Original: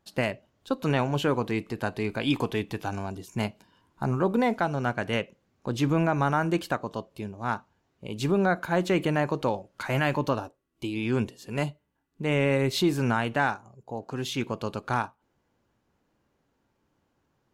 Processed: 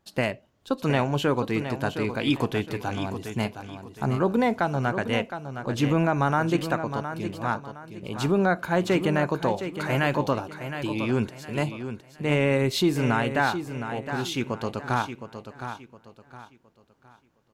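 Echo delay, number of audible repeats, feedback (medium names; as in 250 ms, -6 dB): 714 ms, 3, 32%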